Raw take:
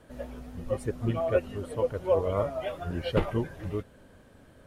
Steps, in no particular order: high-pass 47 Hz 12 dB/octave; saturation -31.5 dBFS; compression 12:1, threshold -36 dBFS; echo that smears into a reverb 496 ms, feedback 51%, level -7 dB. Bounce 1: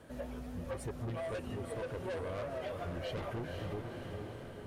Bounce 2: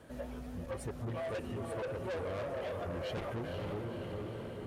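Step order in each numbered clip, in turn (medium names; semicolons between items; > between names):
high-pass > saturation > echo that smears into a reverb > compression; echo that smears into a reverb > saturation > compression > high-pass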